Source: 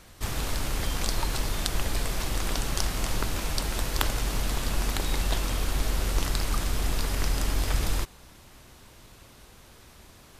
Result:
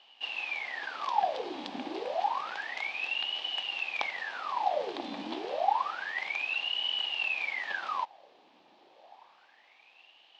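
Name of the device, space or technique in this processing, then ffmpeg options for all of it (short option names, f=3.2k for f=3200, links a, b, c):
voice changer toy: -af "aeval=exprs='val(0)*sin(2*PI*1600*n/s+1600*0.85/0.29*sin(2*PI*0.29*n/s))':c=same,highpass=420,equalizer=f=430:t=q:w=4:g=-4,equalizer=f=800:t=q:w=4:g=9,equalizer=f=1.4k:t=q:w=4:g=-10,equalizer=f=2k:t=q:w=4:g=-5,lowpass=f=3.9k:w=0.5412,lowpass=f=3.9k:w=1.3066,volume=-3dB"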